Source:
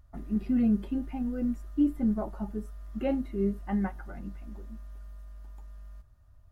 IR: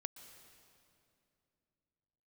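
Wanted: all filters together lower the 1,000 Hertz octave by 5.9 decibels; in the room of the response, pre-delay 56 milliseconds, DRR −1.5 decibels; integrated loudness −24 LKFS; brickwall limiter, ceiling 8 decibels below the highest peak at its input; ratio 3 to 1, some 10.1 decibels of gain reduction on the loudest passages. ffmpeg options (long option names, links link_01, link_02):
-filter_complex "[0:a]equalizer=frequency=1000:width_type=o:gain=-8.5,acompressor=threshold=-35dB:ratio=3,alimiter=level_in=9.5dB:limit=-24dB:level=0:latency=1,volume=-9.5dB,asplit=2[link_01][link_02];[1:a]atrim=start_sample=2205,adelay=56[link_03];[link_02][link_03]afir=irnorm=-1:irlink=0,volume=5dB[link_04];[link_01][link_04]amix=inputs=2:normalize=0,volume=15dB"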